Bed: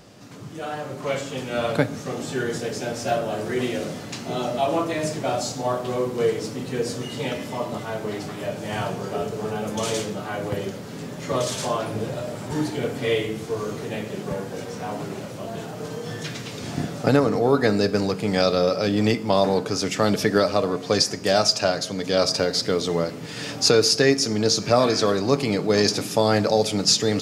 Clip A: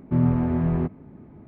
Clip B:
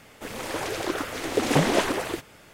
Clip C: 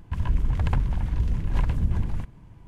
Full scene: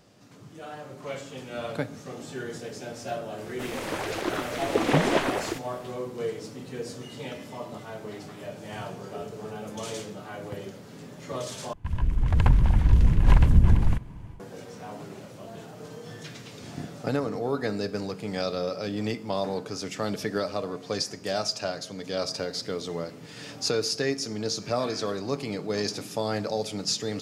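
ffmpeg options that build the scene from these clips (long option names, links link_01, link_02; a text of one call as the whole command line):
ffmpeg -i bed.wav -i cue0.wav -i cue1.wav -i cue2.wav -filter_complex "[0:a]volume=-9.5dB[link_01];[2:a]acrossover=split=3900[link_02][link_03];[link_03]acompressor=threshold=-41dB:ratio=4:attack=1:release=60[link_04];[link_02][link_04]amix=inputs=2:normalize=0[link_05];[3:a]dynaudnorm=framelen=430:gausssize=3:maxgain=11.5dB[link_06];[link_01]asplit=2[link_07][link_08];[link_07]atrim=end=11.734[link_09];[link_06]atrim=end=2.67,asetpts=PTS-STARTPTS,volume=-3dB[link_10];[link_08]atrim=start=14.396[link_11];[link_05]atrim=end=2.53,asetpts=PTS-STARTPTS,volume=-1dB,afade=type=in:duration=0.004:curve=hsin,afade=type=out:start_time=2.526:duration=0.004:curve=hsin,adelay=3380[link_12];[link_09][link_10]acrossfade=duration=0.004:curve1=hsin:curve2=hsin[link_13];[link_13][link_11]acrossfade=duration=0.004:curve1=hsin:curve2=hsin[link_14];[link_14][link_12]amix=inputs=2:normalize=0" out.wav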